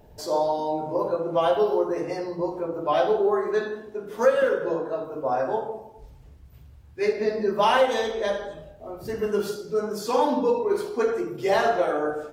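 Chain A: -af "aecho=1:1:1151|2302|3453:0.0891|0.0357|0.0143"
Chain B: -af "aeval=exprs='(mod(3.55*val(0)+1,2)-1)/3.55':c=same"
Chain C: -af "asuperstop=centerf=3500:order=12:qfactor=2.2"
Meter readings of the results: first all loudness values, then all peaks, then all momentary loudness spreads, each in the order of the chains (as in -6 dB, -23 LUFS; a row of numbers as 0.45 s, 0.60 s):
-25.0 LUFS, -24.5 LUFS, -25.0 LUFS; -8.0 dBFS, -11.0 dBFS, -8.0 dBFS; 12 LU, 10 LU, 10 LU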